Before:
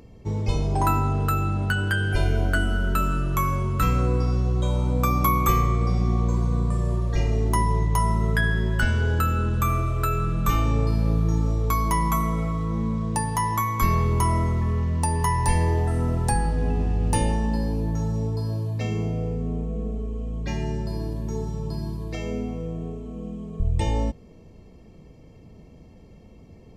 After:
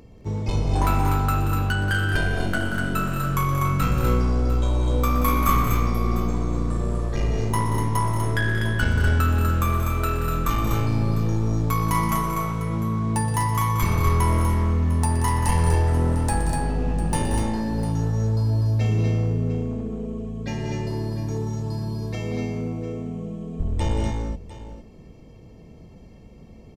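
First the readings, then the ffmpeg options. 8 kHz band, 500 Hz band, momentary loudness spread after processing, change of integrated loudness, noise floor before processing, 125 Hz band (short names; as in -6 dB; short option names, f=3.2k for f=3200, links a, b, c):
+1.0 dB, +0.5 dB, 8 LU, +0.5 dB, -48 dBFS, +1.5 dB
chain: -af "aeval=exprs='clip(val(0),-1,0.0794)':c=same,aecho=1:1:121|181|209|246|701:0.224|0.316|0.316|0.596|0.188"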